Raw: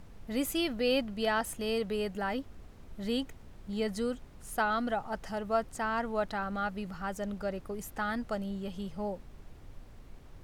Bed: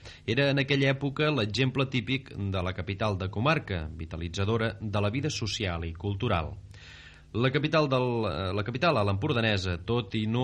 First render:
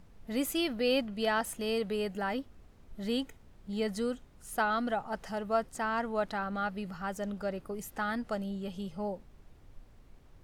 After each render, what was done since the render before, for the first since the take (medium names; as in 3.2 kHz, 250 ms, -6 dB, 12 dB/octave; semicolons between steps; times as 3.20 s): noise print and reduce 6 dB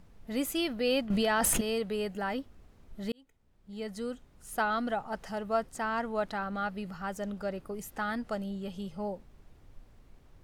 1.10–1.61 s: level flattener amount 100%; 3.12–4.55 s: fade in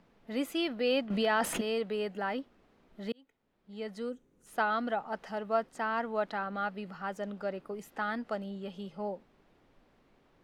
4.09–4.46 s: time-frequency box 540–5700 Hz -11 dB; three-band isolator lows -18 dB, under 180 Hz, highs -12 dB, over 4.6 kHz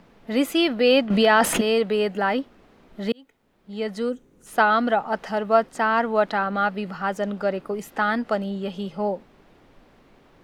trim +11.5 dB